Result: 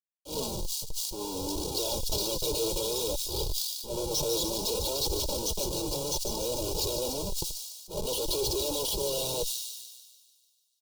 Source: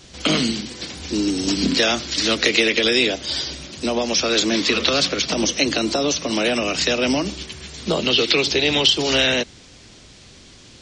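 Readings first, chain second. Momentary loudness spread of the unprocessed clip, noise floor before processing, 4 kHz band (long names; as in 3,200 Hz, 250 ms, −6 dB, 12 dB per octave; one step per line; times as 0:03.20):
11 LU, −46 dBFS, −13.5 dB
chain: comparator with hysteresis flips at −21.5 dBFS
Chebyshev band-stop filter 730–4,300 Hz, order 2
volume swells 108 ms
flanger 0.59 Hz, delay 2.3 ms, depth 4.5 ms, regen +35%
tilt shelving filter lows −3 dB
comb filter 2.1 ms, depth 76%
delay with a high-pass on its return 147 ms, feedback 61%, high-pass 4,000 Hz, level −6 dB
level that may fall only so fast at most 39 dB per second
level −5.5 dB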